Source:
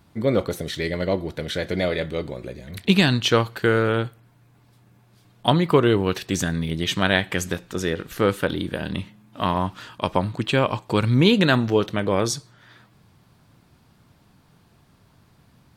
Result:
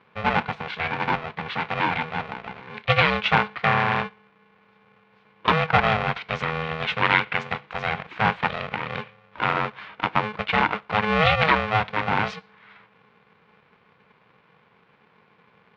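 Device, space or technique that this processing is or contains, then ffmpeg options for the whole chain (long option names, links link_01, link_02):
ring modulator pedal into a guitar cabinet: -af "aeval=exprs='val(0)*sgn(sin(2*PI*320*n/s))':channel_layout=same,highpass=110,equalizer=frequency=250:width_type=q:width=4:gain=-6,equalizer=frequency=400:width_type=q:width=4:gain=-4,equalizer=frequency=590:width_type=q:width=4:gain=-5,equalizer=frequency=1000:width_type=q:width=4:gain=6,equalizer=frequency=1500:width_type=q:width=4:gain=4,equalizer=frequency=2300:width_type=q:width=4:gain=7,lowpass=frequency=3400:width=0.5412,lowpass=frequency=3400:width=1.3066,volume=-2dB"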